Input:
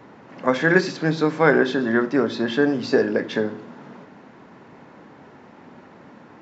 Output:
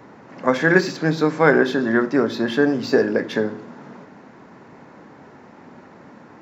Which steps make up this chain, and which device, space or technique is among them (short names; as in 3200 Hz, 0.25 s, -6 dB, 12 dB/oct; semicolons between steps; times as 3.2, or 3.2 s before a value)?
exciter from parts (in parallel at -7 dB: HPF 2900 Hz 24 dB/oct + soft clip -36.5 dBFS, distortion -9 dB); on the sum: gain +1.5 dB